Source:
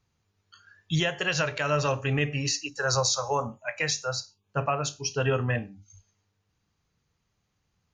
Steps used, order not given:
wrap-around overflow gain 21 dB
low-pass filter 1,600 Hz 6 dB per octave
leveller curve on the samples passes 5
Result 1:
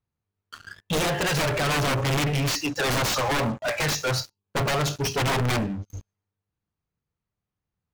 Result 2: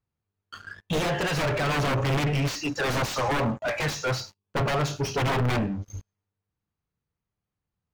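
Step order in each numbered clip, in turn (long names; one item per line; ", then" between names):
wrap-around overflow, then low-pass filter, then leveller curve on the samples
wrap-around overflow, then leveller curve on the samples, then low-pass filter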